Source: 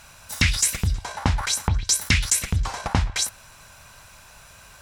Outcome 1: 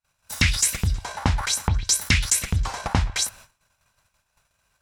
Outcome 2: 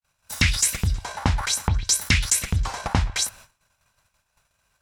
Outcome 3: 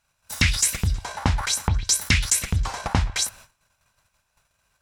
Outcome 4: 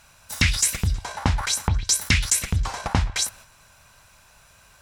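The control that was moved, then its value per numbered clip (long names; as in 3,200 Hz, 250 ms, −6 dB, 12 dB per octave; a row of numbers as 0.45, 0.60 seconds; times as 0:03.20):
noise gate, range: −43, −58, −25, −6 decibels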